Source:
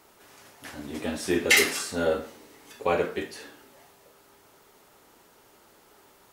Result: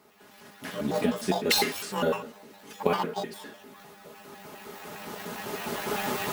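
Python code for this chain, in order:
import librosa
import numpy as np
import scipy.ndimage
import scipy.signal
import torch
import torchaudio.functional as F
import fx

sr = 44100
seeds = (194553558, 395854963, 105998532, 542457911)

p1 = fx.pitch_trill(x, sr, semitones=12.0, every_ms=101)
p2 = fx.recorder_agc(p1, sr, target_db=-16.0, rise_db_per_s=10.0, max_gain_db=30)
p3 = scipy.signal.sosfilt(scipy.signal.butter(2, 76.0, 'highpass', fs=sr, output='sos'), p2)
p4 = fx.peak_eq(p3, sr, hz=180.0, db=7.0, octaves=1.8)
p5 = p4 + 0.5 * np.pad(p4, (int(4.8 * sr / 1000.0), 0))[:len(p4)]
p6 = fx.sample_hold(p5, sr, seeds[0], rate_hz=13000.0, jitter_pct=0)
p7 = p5 + (p6 * librosa.db_to_amplitude(-7.5))
y = p7 * librosa.db_to_amplitude(-7.0)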